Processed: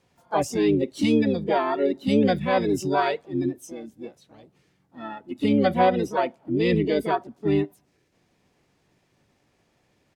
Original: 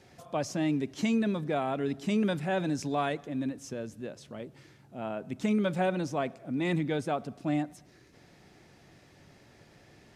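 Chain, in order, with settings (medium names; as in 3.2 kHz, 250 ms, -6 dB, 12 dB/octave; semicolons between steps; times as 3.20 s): harmony voices -12 st -12 dB, +5 st -2 dB, +12 st -15 dB; spectral noise reduction 15 dB; dynamic bell 550 Hz, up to +5 dB, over -40 dBFS, Q 1.1; trim +3.5 dB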